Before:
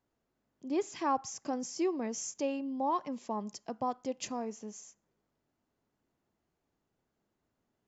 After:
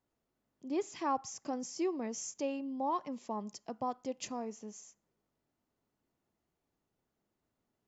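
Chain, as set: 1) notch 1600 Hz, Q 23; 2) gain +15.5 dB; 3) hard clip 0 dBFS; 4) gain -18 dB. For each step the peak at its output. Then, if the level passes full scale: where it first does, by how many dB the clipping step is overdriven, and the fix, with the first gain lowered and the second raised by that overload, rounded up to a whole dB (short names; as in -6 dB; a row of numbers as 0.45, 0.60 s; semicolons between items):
-20.0, -4.5, -4.5, -22.5 dBFS; no overload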